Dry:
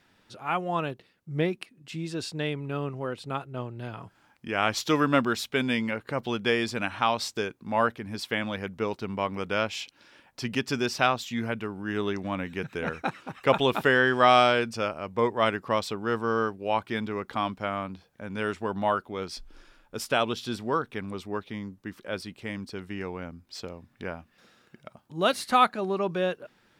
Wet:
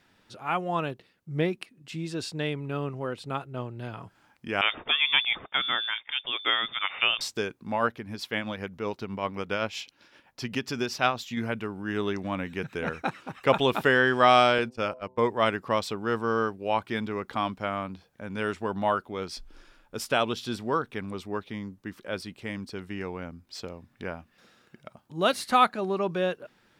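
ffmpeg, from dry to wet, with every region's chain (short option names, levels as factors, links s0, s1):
-filter_complex "[0:a]asettb=1/sr,asplit=3[s0][s1][s2];[s0]atrim=end=4.614[s3];[s1]atrim=start=4.61:end=7.21,asetpts=PTS-STARTPTS,afade=t=in:d=0.004:c=qsin,afade=t=out:st=2.596:d=0.004:c=qsin,tiltshelf=f=1100:g=-3.5,lowpass=f=3100:t=q:w=0.5098,lowpass=f=3100:t=q:w=0.6013,lowpass=f=3100:t=q:w=0.9,lowpass=f=3100:t=q:w=2.563,afreqshift=-3700[s4];[s2]atrim=start=7.206[s5];[s3][s4]acrossfade=d=0.004:c1=hsin:c2=qsin[s6];[s6][s5]acrossfade=d=0.004:c1=qsin:c2=hsin,asettb=1/sr,asplit=3[s7][s8][s9];[s7]atrim=end=7.734[s10];[s8]atrim=start=7.73:end=11.37,asetpts=PTS-STARTPTS,afade=t=in:d=0.004:c=qsin,afade=t=out:st=3.636:d=0.004:c=qsin,tremolo=f=7.8:d=0.44,equalizer=f=8400:t=o:w=0.22:g=-6[s11];[s9]atrim=start=11.366[s12];[s10][s11]acrossfade=d=0.004:c1=hsin:c2=qsin[s13];[s13][s12]acrossfade=d=0.004:c1=qsin:c2=hsin,asettb=1/sr,asplit=3[s14][s15][s16];[s14]atrim=end=14.584[s17];[s15]atrim=start=14.58:end=15.19,asetpts=PTS-STARTPTS,afade=t=in:d=0.004:c=qsin,afade=t=out:st=0.606:d=0.004:c=qsin,agate=range=0.0794:threshold=0.0158:ratio=16:release=100:detection=peak,bandreject=f=127.4:t=h:w=4,bandreject=f=254.8:t=h:w=4,bandreject=f=382.2:t=h:w=4,bandreject=f=509.6:t=h:w=4,bandreject=f=637:t=h:w=4,bandreject=f=764.4:t=h:w=4,bandreject=f=891.8:t=h:w=4,bandreject=f=1019.2:t=h:w=4[s18];[s16]atrim=start=15.186[s19];[s17][s18]acrossfade=d=0.004:c1=hsin:c2=qsin[s20];[s20][s19]acrossfade=d=0.004:c1=qsin:c2=hsin"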